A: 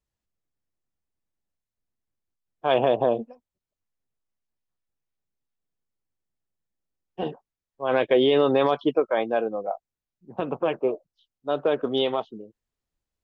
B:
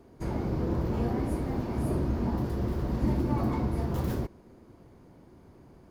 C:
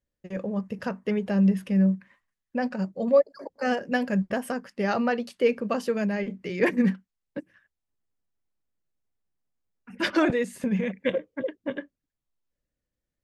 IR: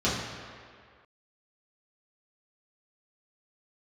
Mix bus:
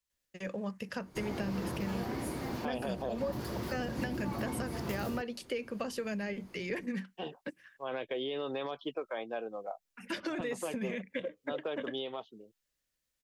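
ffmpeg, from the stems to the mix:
-filter_complex "[0:a]alimiter=limit=0.2:level=0:latency=1:release=499,volume=0.531,asplit=2[s0][s1];[1:a]adelay=950,volume=1.19[s2];[2:a]acompressor=threshold=0.0708:ratio=6,adelay=100,volume=0.944[s3];[s1]apad=whole_len=302488[s4];[s2][s4]sidechaincompress=threshold=0.0141:ratio=4:attack=16:release=180[s5];[s0][s5][s3]amix=inputs=3:normalize=0,tiltshelf=f=1100:g=-8,acrossover=split=92|610[s6][s7][s8];[s6]acompressor=threshold=0.002:ratio=4[s9];[s7]acompressor=threshold=0.0224:ratio=4[s10];[s8]acompressor=threshold=0.00794:ratio=4[s11];[s9][s10][s11]amix=inputs=3:normalize=0"

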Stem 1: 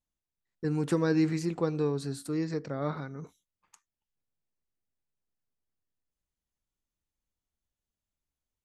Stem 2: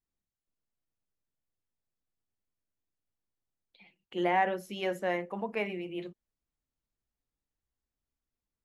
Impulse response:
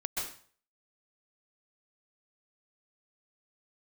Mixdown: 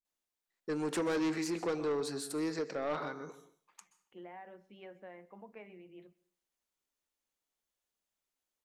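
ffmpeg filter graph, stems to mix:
-filter_complex "[0:a]highpass=370,adelay=50,volume=1.26,asplit=2[s0][s1];[s1]volume=0.178[s2];[1:a]lowpass=2500,acompressor=threshold=0.0316:ratio=6,volume=0.158,asplit=2[s3][s4];[s4]volume=0.0631[s5];[2:a]atrim=start_sample=2205[s6];[s2][s5]amix=inputs=2:normalize=0[s7];[s7][s6]afir=irnorm=-1:irlink=0[s8];[s0][s3][s8]amix=inputs=3:normalize=0,asoftclip=type=tanh:threshold=0.0376"

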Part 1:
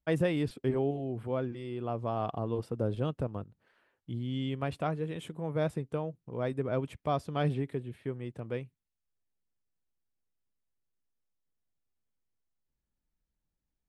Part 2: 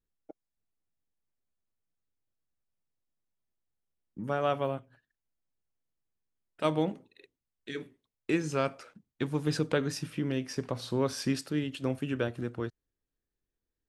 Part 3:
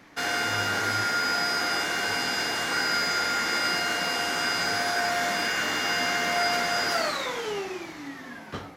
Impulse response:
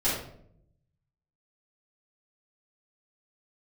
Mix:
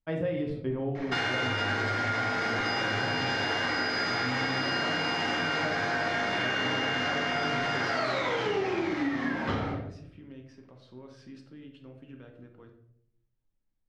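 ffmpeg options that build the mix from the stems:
-filter_complex "[0:a]volume=0.562,asplit=2[s0][s1];[s1]volume=0.335[s2];[1:a]alimiter=limit=0.0631:level=0:latency=1,volume=0.133,asplit=2[s3][s4];[s4]volume=0.237[s5];[2:a]alimiter=level_in=1.06:limit=0.0631:level=0:latency=1,volume=0.944,adelay=950,volume=1.41,asplit=2[s6][s7];[s7]volume=0.668[s8];[3:a]atrim=start_sample=2205[s9];[s2][s5][s8]amix=inputs=3:normalize=0[s10];[s10][s9]afir=irnorm=-1:irlink=0[s11];[s0][s3][s6][s11]amix=inputs=4:normalize=0,lowpass=3700,acompressor=threshold=0.0501:ratio=6"

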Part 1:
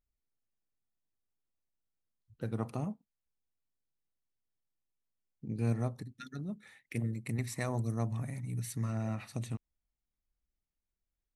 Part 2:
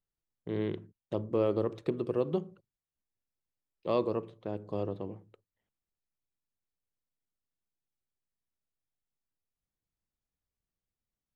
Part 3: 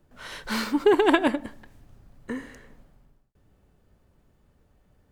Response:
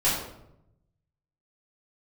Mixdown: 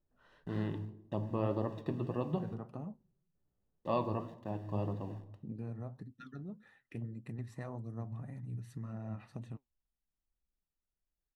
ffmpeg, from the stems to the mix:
-filter_complex "[0:a]volume=1.33[s0];[1:a]aeval=exprs='val(0)*gte(abs(val(0)),0.00224)':c=same,aecho=1:1:1.1:0.63,volume=1.19,asplit=2[s1][s2];[s2]volume=0.075[s3];[2:a]volume=0.126,asplit=3[s4][s5][s6];[s4]atrim=end=0.78,asetpts=PTS-STARTPTS,afade=t=out:st=0.776:d=0.004:c=hsin[s7];[s5]atrim=start=0.78:end=2.8,asetpts=PTS-STARTPTS,volume=0[s8];[s6]atrim=start=2.8,asetpts=PTS-STARTPTS,afade=t=in:d=0.004:c=hsin[s9];[s7][s8][s9]concat=n=3:v=0:a=1[s10];[s0][s10]amix=inputs=2:normalize=0,highshelf=f=3200:g=-8.5,acompressor=threshold=0.0158:ratio=3,volume=1[s11];[3:a]atrim=start_sample=2205[s12];[s3][s12]afir=irnorm=-1:irlink=0[s13];[s1][s11][s13]amix=inputs=3:normalize=0,asuperstop=centerf=2200:order=4:qfactor=6.5,highshelf=f=4100:g=-12,flanger=delay=3.2:depth=7.2:regen=71:speed=1.8:shape=triangular"

